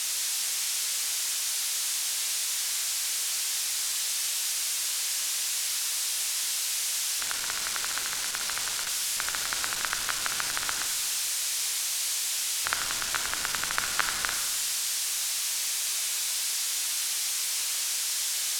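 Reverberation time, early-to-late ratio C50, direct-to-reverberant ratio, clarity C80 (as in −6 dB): 1.5 s, 6.5 dB, 5.5 dB, 8.0 dB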